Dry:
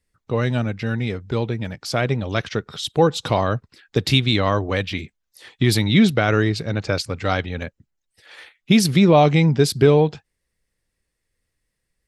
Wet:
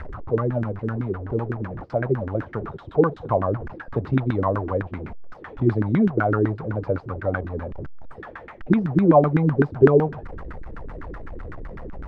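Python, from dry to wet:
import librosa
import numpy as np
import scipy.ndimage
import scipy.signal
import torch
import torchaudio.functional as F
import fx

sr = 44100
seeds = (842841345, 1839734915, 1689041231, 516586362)

y = fx.delta_mod(x, sr, bps=64000, step_db=-23.0)
y = fx.low_shelf(y, sr, hz=170.0, db=8.0)
y = fx.filter_lfo_lowpass(y, sr, shape='saw_down', hz=7.9, low_hz=260.0, high_hz=1600.0, q=5.7)
y = y * librosa.db_to_amplitude(-9.5)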